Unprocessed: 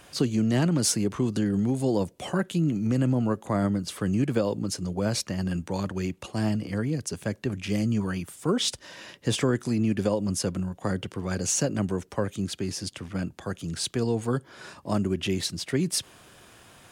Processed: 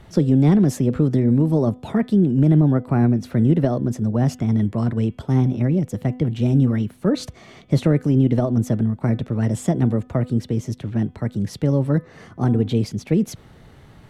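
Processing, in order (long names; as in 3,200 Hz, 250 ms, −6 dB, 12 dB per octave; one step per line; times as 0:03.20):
RIAA equalisation playback
speed change +20%
hum removal 250.9 Hz, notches 14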